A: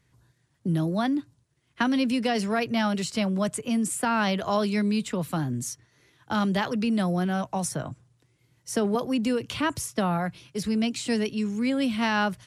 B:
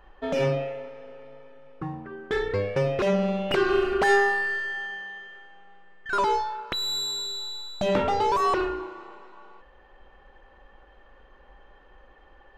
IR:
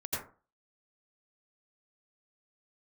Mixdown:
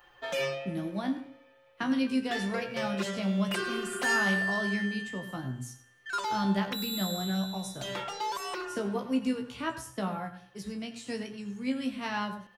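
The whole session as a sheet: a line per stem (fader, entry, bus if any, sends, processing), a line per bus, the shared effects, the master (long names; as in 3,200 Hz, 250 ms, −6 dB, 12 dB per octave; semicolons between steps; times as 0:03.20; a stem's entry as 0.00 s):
−0.5 dB, 0.00 s, send −14 dB, echo send −17.5 dB, tuned comb filter 65 Hz, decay 0.18 s, harmonics all, mix 100%; expander for the loud parts 1.5 to 1, over −44 dBFS
−4.5 dB, 0.00 s, no send, no echo send, spectral tilt +4 dB per octave; comb filter 5.7 ms, depth 81%; automatic ducking −7 dB, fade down 0.45 s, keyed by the first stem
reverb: on, RT60 0.35 s, pre-delay 77 ms
echo: repeating echo 100 ms, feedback 39%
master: no processing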